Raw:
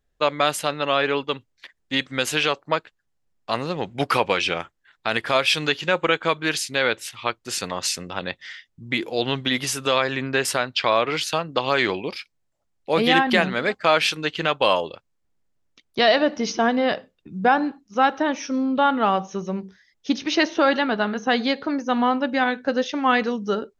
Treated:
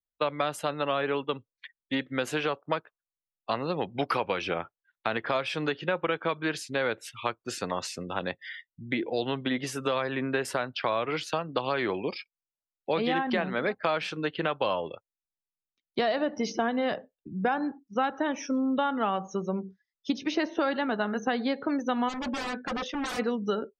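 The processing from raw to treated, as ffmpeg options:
ffmpeg -i in.wav -filter_complex "[0:a]asplit=3[link_01][link_02][link_03];[link_01]afade=type=out:start_time=22.08:duration=0.02[link_04];[link_02]aeval=exprs='0.0562*(abs(mod(val(0)/0.0562+3,4)-2)-1)':channel_layout=same,afade=type=in:start_time=22.08:duration=0.02,afade=type=out:start_time=23.18:duration=0.02[link_05];[link_03]afade=type=in:start_time=23.18:duration=0.02[link_06];[link_04][link_05][link_06]amix=inputs=3:normalize=0,afftdn=noise_reduction=28:noise_floor=-40,acrossover=split=170|1600[link_07][link_08][link_09];[link_07]acompressor=threshold=-46dB:ratio=4[link_10];[link_08]acompressor=threshold=-26dB:ratio=4[link_11];[link_09]acompressor=threshold=-39dB:ratio=4[link_12];[link_10][link_11][link_12]amix=inputs=3:normalize=0" out.wav

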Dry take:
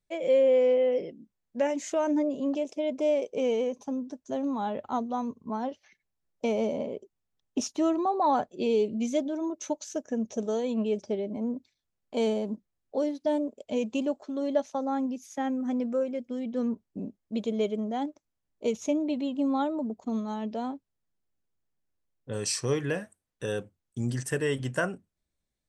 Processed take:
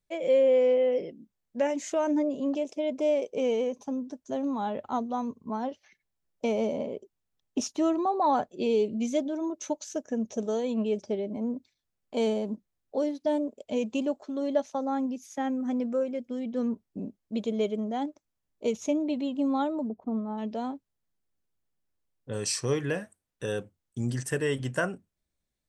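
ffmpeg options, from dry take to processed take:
ffmpeg -i in.wav -filter_complex "[0:a]asplit=3[link_01][link_02][link_03];[link_01]afade=type=out:start_time=19.88:duration=0.02[link_04];[link_02]lowpass=1100,afade=type=in:start_time=19.88:duration=0.02,afade=type=out:start_time=20.37:duration=0.02[link_05];[link_03]afade=type=in:start_time=20.37:duration=0.02[link_06];[link_04][link_05][link_06]amix=inputs=3:normalize=0" out.wav

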